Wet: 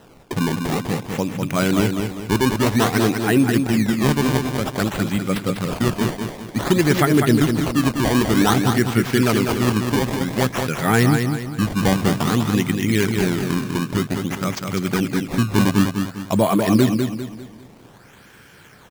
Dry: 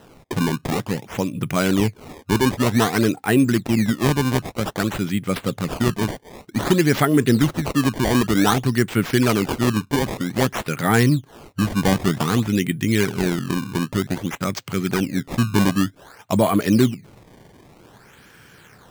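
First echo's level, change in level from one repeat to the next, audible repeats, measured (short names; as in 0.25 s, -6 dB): -5.5 dB, -8.0 dB, 4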